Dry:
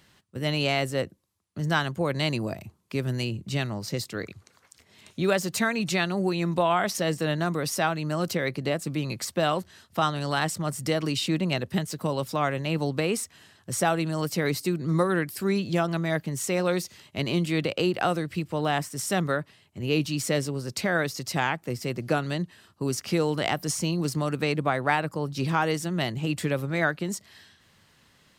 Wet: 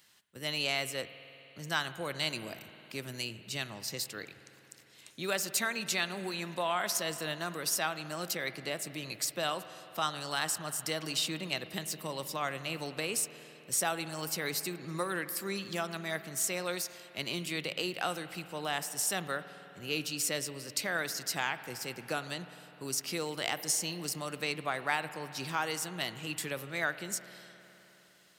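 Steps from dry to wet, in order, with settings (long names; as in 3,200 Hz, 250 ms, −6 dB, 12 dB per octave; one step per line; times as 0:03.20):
spectral tilt +3 dB per octave
spring reverb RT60 3.6 s, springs 51 ms, chirp 55 ms, DRR 12 dB
level −8 dB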